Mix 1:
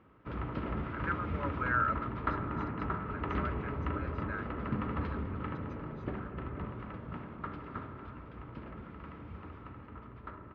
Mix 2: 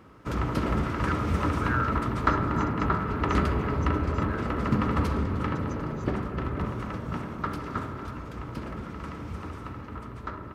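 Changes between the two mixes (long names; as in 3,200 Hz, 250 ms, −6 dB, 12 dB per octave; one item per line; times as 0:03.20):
background +9.5 dB
master: remove low-pass filter 3,200 Hz 24 dB per octave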